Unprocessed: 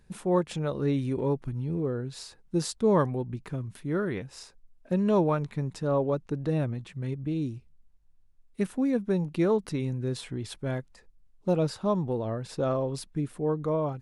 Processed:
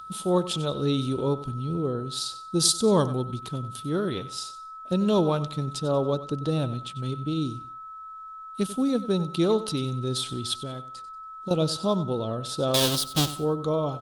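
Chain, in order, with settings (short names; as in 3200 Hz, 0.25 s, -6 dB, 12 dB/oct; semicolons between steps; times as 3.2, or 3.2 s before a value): 12.74–13.32 half-waves squared off; HPF 54 Hz 6 dB/oct; 2.6–3.47 tone controls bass +1 dB, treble +5 dB; 10.57–11.51 compressor 16:1, threshold -33 dBFS, peak gain reduction 12 dB; whine 1300 Hz -38 dBFS; resonant high shelf 2700 Hz +8.5 dB, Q 3; feedback echo 94 ms, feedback 28%, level -14.5 dB; gain +2 dB; Opus 32 kbps 48000 Hz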